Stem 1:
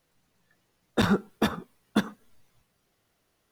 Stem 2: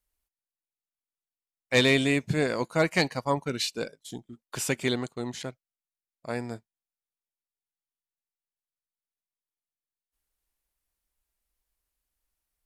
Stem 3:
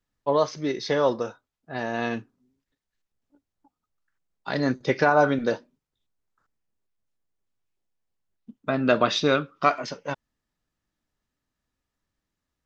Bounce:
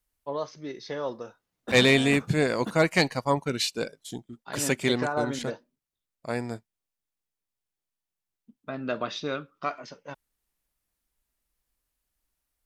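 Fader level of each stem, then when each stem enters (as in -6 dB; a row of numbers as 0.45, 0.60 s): -12.0, +2.0, -10.0 dB; 0.70, 0.00, 0.00 s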